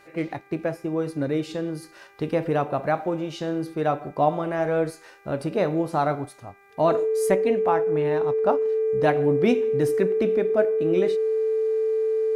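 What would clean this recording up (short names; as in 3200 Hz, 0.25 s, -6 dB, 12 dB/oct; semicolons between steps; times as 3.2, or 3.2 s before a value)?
de-hum 397.3 Hz, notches 6; notch 440 Hz, Q 30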